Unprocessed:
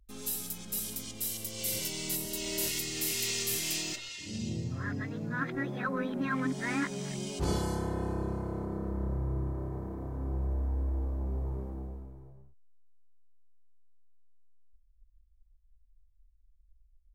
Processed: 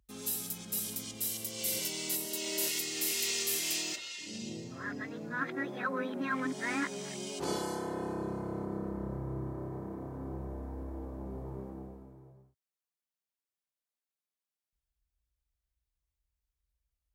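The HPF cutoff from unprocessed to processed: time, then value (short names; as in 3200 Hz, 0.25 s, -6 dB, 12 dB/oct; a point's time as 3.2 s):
1.14 s 93 Hz
2.17 s 270 Hz
7.82 s 270 Hz
8.51 s 130 Hz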